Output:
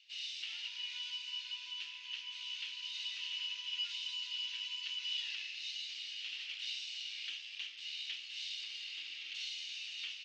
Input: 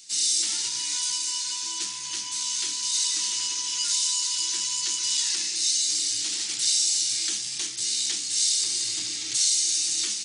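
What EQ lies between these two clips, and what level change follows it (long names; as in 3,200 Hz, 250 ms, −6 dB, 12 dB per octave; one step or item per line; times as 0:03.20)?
resonant band-pass 2,800 Hz, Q 5.6
high-frequency loss of the air 230 metres
+4.0 dB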